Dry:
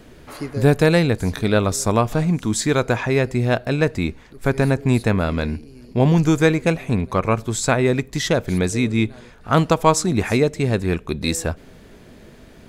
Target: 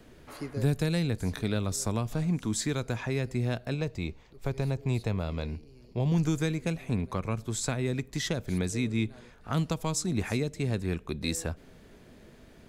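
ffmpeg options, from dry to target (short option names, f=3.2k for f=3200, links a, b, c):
-filter_complex "[0:a]asettb=1/sr,asplit=3[a][b][c];[a]atrim=end=3.744[d];[b]atrim=start=3.74:end=6.12,asetpts=PTS-STARTPTS,afade=t=in:d=0.004:c=qsin,afade=t=out:st=2.376:d=0.004:c=qsin,equalizer=f=250:t=o:w=0.67:g=-7,equalizer=f=1.6k:t=o:w=0.67:g=-8,equalizer=f=10k:t=o:w=0.67:g=-9[e];[c]atrim=start=6.116[f];[d][e]acrossfade=d=0.004:c1=hsin:c2=qsin[g];[g][f]acrossfade=d=0.004:c1=qsin:c2=hsin,acrossover=split=250|3000[h][i][j];[i]acompressor=threshold=-24dB:ratio=6[k];[h][k][j]amix=inputs=3:normalize=0,volume=-8.5dB"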